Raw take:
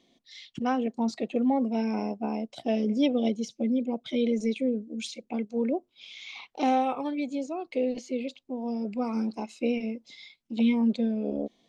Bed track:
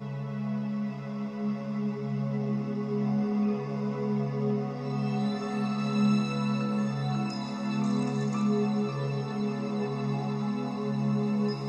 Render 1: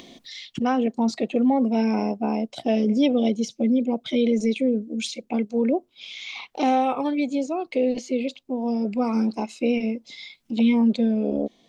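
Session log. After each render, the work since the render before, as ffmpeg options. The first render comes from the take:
-filter_complex "[0:a]asplit=2[a][b];[b]alimiter=limit=-22dB:level=0:latency=1,volume=1.5dB[c];[a][c]amix=inputs=2:normalize=0,acompressor=mode=upward:threshold=-35dB:ratio=2.5"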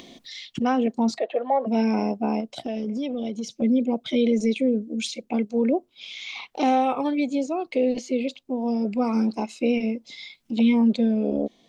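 -filter_complex "[0:a]asplit=3[a][b][c];[a]afade=t=out:st=1.18:d=0.02[d];[b]highpass=f=440:w=0.5412,highpass=f=440:w=1.3066,equalizer=f=640:t=q:w=4:g=10,equalizer=f=1k:t=q:w=4:g=5,equalizer=f=1.7k:t=q:w=4:g=9,equalizer=f=2.5k:t=q:w=4:g=-6,lowpass=f=3.6k:w=0.5412,lowpass=f=3.6k:w=1.3066,afade=t=in:st=1.18:d=0.02,afade=t=out:st=1.66:d=0.02[e];[c]afade=t=in:st=1.66:d=0.02[f];[d][e][f]amix=inputs=3:normalize=0,asettb=1/sr,asplit=3[g][h][i];[g]atrim=end=2.404[j];[h]atrim=start=2.4:end=3.62,asetpts=PTS-STARTPTS,afade=t=in:d=0.004:c=qsin,afade=t=out:st=1.216:d=0.004:c=qsin,acompressor=threshold=-26dB:ratio=5:attack=3.2:release=140:knee=1:detection=peak[k];[i]atrim=start=3.616[l];[j][k]acrossfade=d=0.004:c1=hsin:c2=qsin[m];[m][l]acrossfade=d=0.004:c1=qsin:c2=hsin"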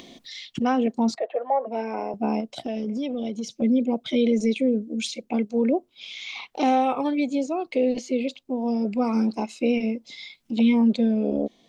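-filter_complex "[0:a]asettb=1/sr,asplit=3[a][b][c];[a]atrim=end=1.154[d];[b]atrim=start=1.15:end=2.14,asetpts=PTS-STARTPTS,afade=t=in:d=0.004:c=qsin,afade=t=out:st=0.986:d=0.004:c=qsin,acrossover=split=350 2100:gain=0.0794 1 0.224[e][f][g];[e][f][g]amix=inputs=3:normalize=0[h];[c]atrim=start=2.136[i];[d][h]acrossfade=d=0.004:c1=hsin:c2=qsin[j];[j][i]acrossfade=d=0.004:c1=qsin:c2=hsin"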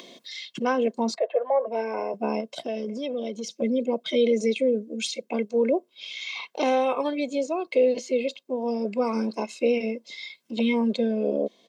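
-af "highpass=f=190:w=0.5412,highpass=f=190:w=1.3066,aecho=1:1:1.9:0.5"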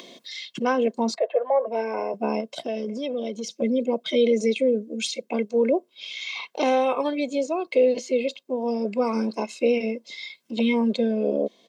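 -af "volume=1.5dB"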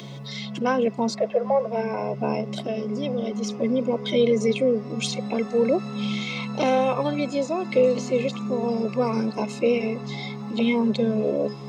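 -filter_complex "[1:a]volume=-3.5dB[a];[0:a][a]amix=inputs=2:normalize=0"

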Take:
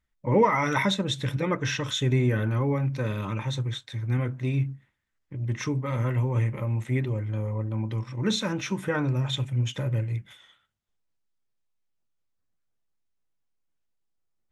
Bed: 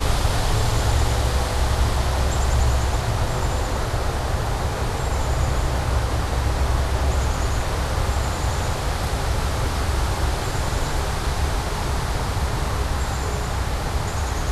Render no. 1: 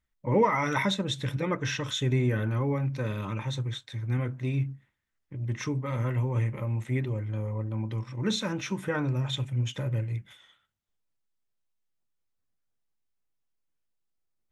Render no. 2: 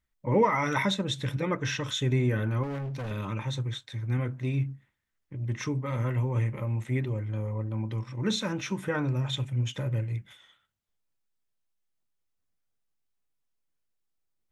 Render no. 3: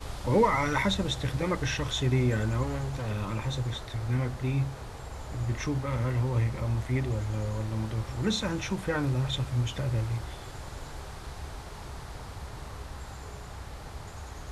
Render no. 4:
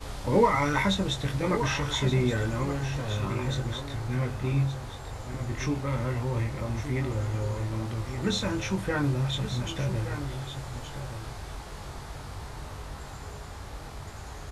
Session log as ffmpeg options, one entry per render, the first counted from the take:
-af "volume=-2.5dB"
-filter_complex "[0:a]asettb=1/sr,asplit=3[a][b][c];[a]atrim=end=2.634[d];[b]atrim=start=2.63:end=3.11,asetpts=PTS-STARTPTS,afade=t=in:d=0.004:c=qsin,afade=t=out:st=0.476:d=0.004:c=qsin,asoftclip=type=hard:threshold=-32dB[e];[c]atrim=start=3.106[f];[d][e]acrossfade=d=0.004:c1=hsin:c2=qsin[g];[g][f]acrossfade=d=0.004:c1=qsin:c2=hsin"
-filter_complex "[1:a]volume=-17.5dB[a];[0:a][a]amix=inputs=2:normalize=0"
-filter_complex "[0:a]asplit=2[a][b];[b]adelay=21,volume=-5.5dB[c];[a][c]amix=inputs=2:normalize=0,asplit=2[d][e];[e]aecho=0:1:1172:0.316[f];[d][f]amix=inputs=2:normalize=0"

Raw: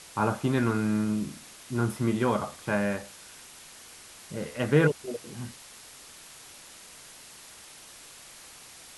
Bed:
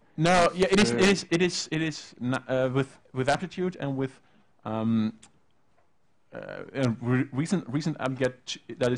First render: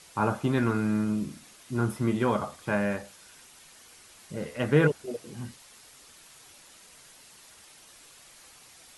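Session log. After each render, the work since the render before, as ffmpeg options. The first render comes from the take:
-af "afftdn=nr=6:nf=-49"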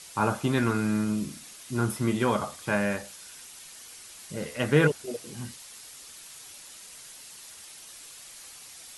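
-af "highshelf=f=2.6k:g=8.5"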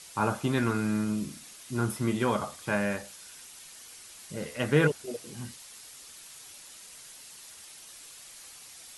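-af "volume=-2dB"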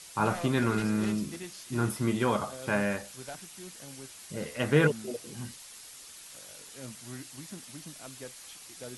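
-filter_complex "[1:a]volume=-18.5dB[a];[0:a][a]amix=inputs=2:normalize=0"

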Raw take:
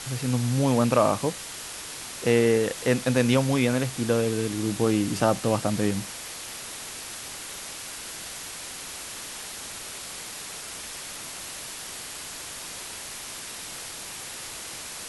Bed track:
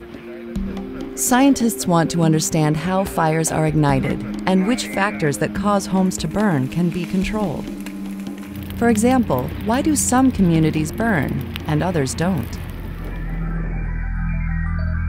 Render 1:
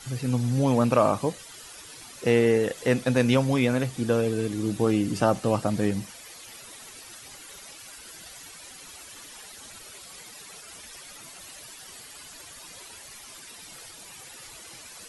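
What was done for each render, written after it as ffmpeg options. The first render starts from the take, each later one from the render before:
-af "afftdn=nr=12:nf=-38"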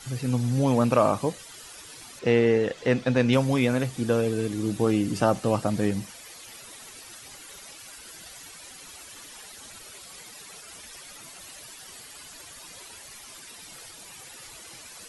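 -filter_complex "[0:a]asettb=1/sr,asplit=3[a][b][c];[a]atrim=end=2.194[d];[b]atrim=start=2.19:end=3.33,asetpts=PTS-STARTPTS,afade=t=in:d=0.004:c=qsin,afade=t=out:st=1.136:d=0.004:c=qsin,lowpass=5k[e];[c]atrim=start=3.326[f];[d][e]acrossfade=d=0.004:c1=hsin:c2=qsin[g];[g][f]acrossfade=d=0.004:c1=qsin:c2=hsin"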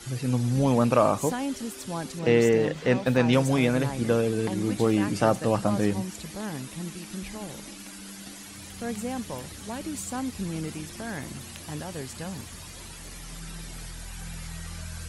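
-filter_complex "[1:a]volume=-17dB[a];[0:a][a]amix=inputs=2:normalize=0"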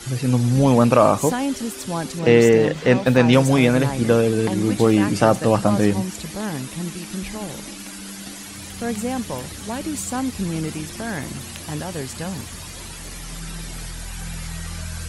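-af "volume=7dB,alimiter=limit=-2dB:level=0:latency=1"

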